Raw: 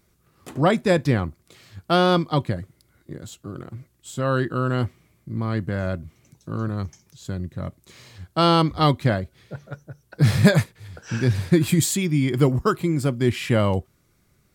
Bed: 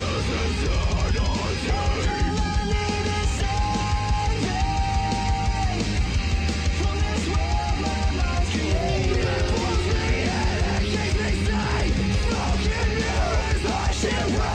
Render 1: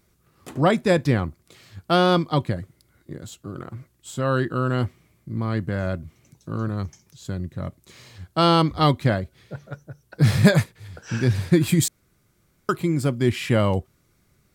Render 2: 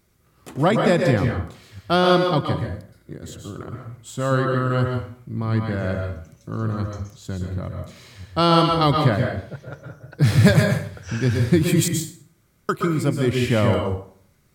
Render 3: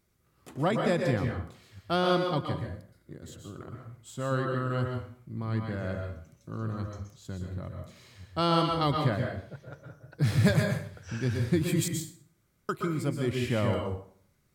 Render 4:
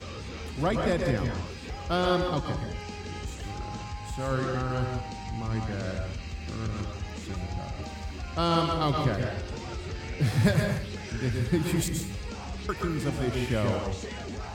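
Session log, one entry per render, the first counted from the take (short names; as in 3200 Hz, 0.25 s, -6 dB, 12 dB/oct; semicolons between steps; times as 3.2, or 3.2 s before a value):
3.56–4.17 dynamic EQ 1100 Hz, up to +6 dB, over -57 dBFS, Q 0.89; 11.88–12.69 room tone
plate-style reverb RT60 0.54 s, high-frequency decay 0.75×, pre-delay 0.11 s, DRR 2 dB
gain -9 dB
add bed -14 dB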